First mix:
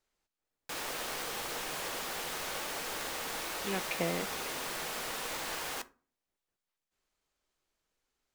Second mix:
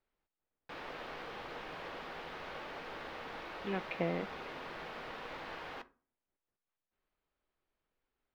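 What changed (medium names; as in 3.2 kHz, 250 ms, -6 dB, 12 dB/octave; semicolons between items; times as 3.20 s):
background -3.0 dB; master: add distance through air 340 m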